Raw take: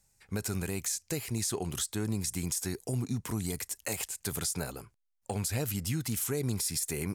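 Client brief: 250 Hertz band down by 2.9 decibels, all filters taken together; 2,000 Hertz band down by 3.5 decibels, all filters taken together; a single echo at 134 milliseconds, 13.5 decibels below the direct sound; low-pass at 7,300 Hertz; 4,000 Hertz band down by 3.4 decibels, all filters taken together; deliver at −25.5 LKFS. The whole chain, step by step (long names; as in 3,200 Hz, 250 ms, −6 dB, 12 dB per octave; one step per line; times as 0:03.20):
low-pass filter 7,300 Hz
parametric band 250 Hz −4 dB
parametric band 2,000 Hz −3.5 dB
parametric band 4,000 Hz −3 dB
single-tap delay 134 ms −13.5 dB
level +11 dB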